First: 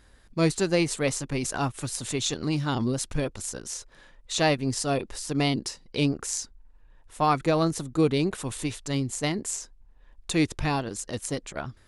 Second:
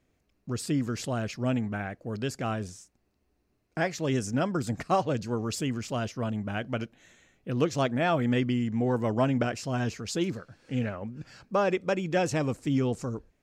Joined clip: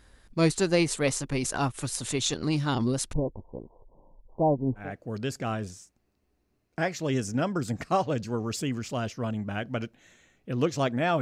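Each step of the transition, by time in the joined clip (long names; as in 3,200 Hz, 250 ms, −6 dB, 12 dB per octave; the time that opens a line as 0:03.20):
first
0:03.13–0:04.93: Butterworth low-pass 1,000 Hz 96 dB per octave
0:04.84: continue with second from 0:01.83, crossfade 0.18 s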